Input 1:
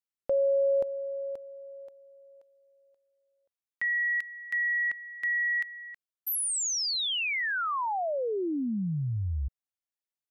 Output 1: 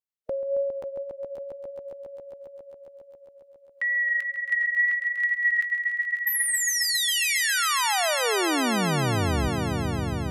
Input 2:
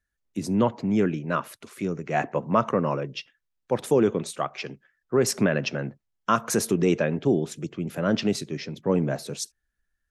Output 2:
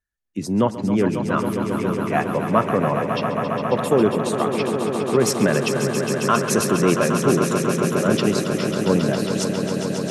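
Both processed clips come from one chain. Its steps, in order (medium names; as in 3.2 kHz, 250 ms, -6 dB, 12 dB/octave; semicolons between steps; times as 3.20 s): vibrato 2.1 Hz 14 cents; spectral noise reduction 8 dB; echo with a slow build-up 136 ms, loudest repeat 5, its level -9 dB; trim +3 dB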